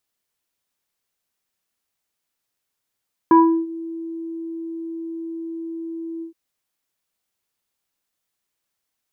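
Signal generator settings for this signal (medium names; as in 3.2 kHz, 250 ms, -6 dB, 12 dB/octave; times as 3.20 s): synth note square E4 24 dB/octave, low-pass 430 Hz, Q 3, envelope 1.5 oct, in 0.39 s, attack 2.3 ms, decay 0.35 s, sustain -23 dB, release 0.11 s, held 2.91 s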